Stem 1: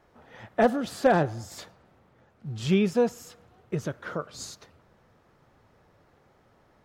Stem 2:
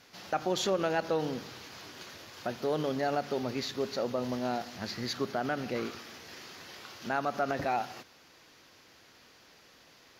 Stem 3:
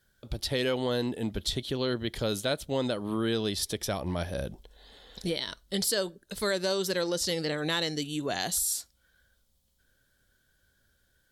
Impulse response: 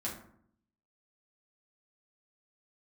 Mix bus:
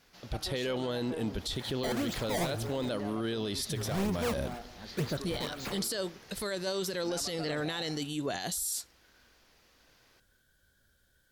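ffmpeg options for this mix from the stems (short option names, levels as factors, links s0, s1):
-filter_complex "[0:a]acrusher=samples=19:mix=1:aa=0.000001:lfo=1:lforange=30.4:lforate=2,asoftclip=type=hard:threshold=0.0596,adelay=1250,volume=1[s0];[1:a]asoftclip=type=tanh:threshold=0.0299,volume=0.447,asplit=2[s1][s2];[s2]volume=0.158[s3];[2:a]volume=1[s4];[s3]aecho=0:1:214:1[s5];[s0][s1][s4][s5]amix=inputs=4:normalize=0,alimiter=level_in=1.12:limit=0.0631:level=0:latency=1:release=14,volume=0.891"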